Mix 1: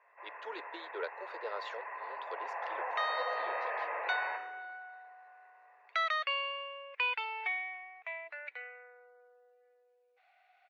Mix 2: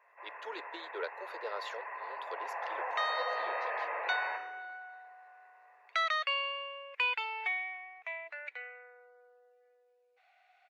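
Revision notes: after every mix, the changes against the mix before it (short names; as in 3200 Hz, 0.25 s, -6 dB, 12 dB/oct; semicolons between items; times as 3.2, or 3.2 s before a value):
master: remove air absorption 100 m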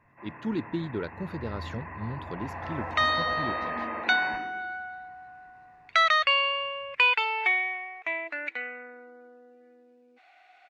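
second sound +9.5 dB; master: remove steep high-pass 450 Hz 48 dB/oct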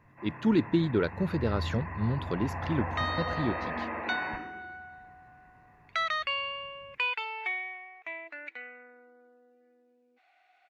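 speech +6.0 dB; second sound -8.5 dB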